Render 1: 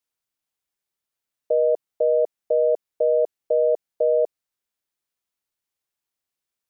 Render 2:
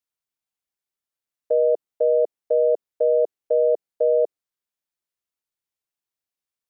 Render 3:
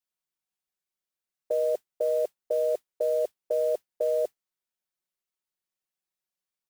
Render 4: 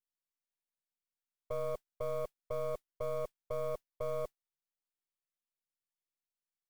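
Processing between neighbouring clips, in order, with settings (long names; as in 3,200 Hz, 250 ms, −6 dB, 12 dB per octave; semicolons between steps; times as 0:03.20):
dynamic equaliser 400 Hz, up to +7 dB, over −32 dBFS, Q 0.73; level −5 dB
comb filter 5.4 ms, depth 81%; noise that follows the level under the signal 26 dB; level −4 dB
gain on one half-wave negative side −12 dB; level −7.5 dB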